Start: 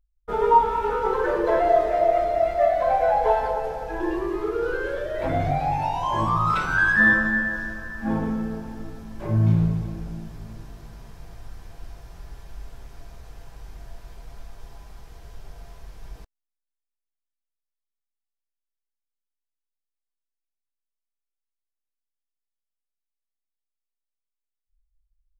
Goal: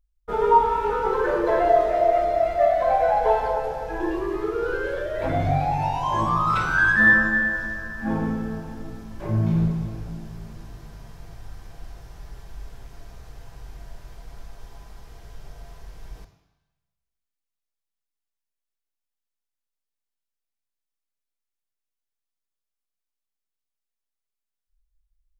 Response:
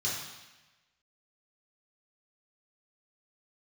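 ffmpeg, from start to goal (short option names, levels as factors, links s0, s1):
-filter_complex "[0:a]asplit=2[s0][s1];[1:a]atrim=start_sample=2205,adelay=45[s2];[s1][s2]afir=irnorm=-1:irlink=0,volume=0.168[s3];[s0][s3]amix=inputs=2:normalize=0"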